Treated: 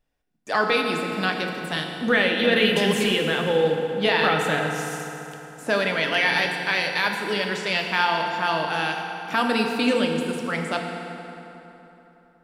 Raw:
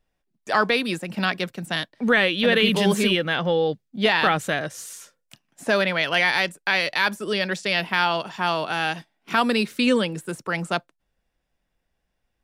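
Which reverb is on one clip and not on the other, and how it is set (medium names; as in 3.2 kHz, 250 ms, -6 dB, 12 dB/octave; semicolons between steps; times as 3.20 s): FDN reverb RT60 3.4 s, high-frequency decay 0.65×, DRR 1.5 dB; trim -2.5 dB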